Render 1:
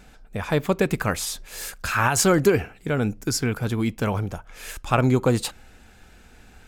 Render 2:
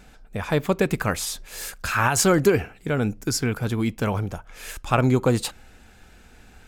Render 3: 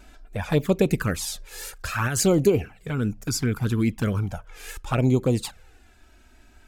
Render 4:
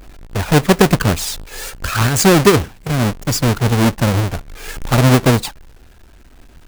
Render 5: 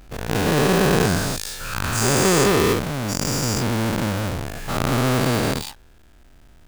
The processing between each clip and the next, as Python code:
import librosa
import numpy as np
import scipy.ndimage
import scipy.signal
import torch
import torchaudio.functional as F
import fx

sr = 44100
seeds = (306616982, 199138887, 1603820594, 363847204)

y1 = x
y2 = fx.rider(y1, sr, range_db=4, speed_s=2.0)
y2 = fx.dynamic_eq(y2, sr, hz=1500.0, q=0.73, threshold_db=-31.0, ratio=4.0, max_db=-4)
y2 = fx.env_flanger(y2, sr, rest_ms=3.3, full_db=-15.0)
y3 = fx.halfwave_hold(y2, sr)
y3 = y3 * librosa.db_to_amplitude(5.0)
y4 = fx.spec_dilate(y3, sr, span_ms=480)
y4 = y4 * librosa.db_to_amplitude(-13.5)